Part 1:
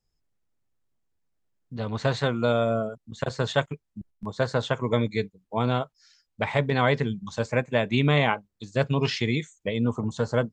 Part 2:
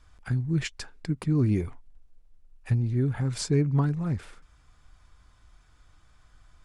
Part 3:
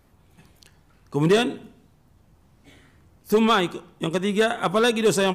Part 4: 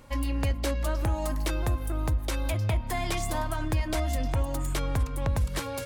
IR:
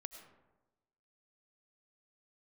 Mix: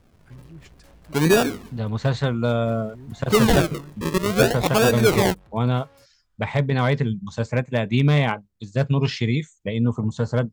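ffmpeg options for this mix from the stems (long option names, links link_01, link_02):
-filter_complex "[0:a]bass=frequency=250:gain=7,treble=frequency=4000:gain=0,asoftclip=type=hard:threshold=-9dB,volume=-0.5dB[link_01];[1:a]volume=-17.5dB[link_02];[2:a]acrusher=samples=41:mix=1:aa=0.000001:lfo=1:lforange=41:lforate=0.56,volume=1.5dB[link_03];[3:a]asoftclip=type=hard:threshold=-36dB,adelay=200,volume=-15.5dB[link_04];[link_01][link_02][link_03][link_04]amix=inputs=4:normalize=0"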